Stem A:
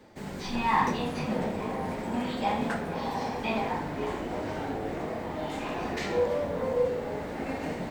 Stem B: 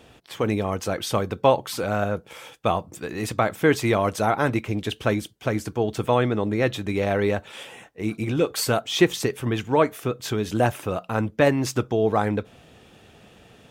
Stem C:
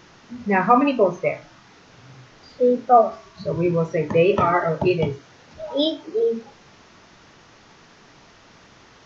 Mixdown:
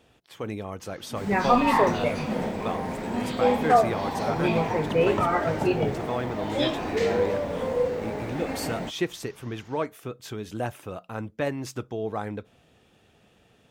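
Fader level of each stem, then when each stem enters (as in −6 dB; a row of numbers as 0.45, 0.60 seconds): +1.5, −9.5, −5.5 decibels; 1.00, 0.00, 0.80 seconds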